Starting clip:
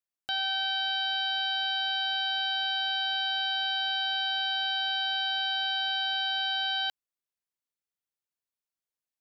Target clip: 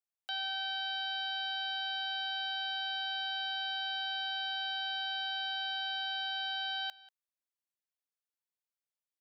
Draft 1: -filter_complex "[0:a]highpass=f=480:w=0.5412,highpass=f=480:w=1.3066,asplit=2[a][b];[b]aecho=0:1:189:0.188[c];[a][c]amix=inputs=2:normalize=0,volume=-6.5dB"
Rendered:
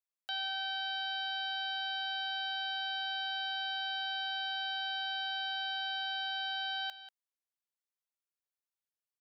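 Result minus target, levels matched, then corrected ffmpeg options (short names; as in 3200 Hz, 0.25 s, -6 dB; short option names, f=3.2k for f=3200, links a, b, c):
echo-to-direct +6.5 dB
-filter_complex "[0:a]highpass=f=480:w=0.5412,highpass=f=480:w=1.3066,asplit=2[a][b];[b]aecho=0:1:189:0.0891[c];[a][c]amix=inputs=2:normalize=0,volume=-6.5dB"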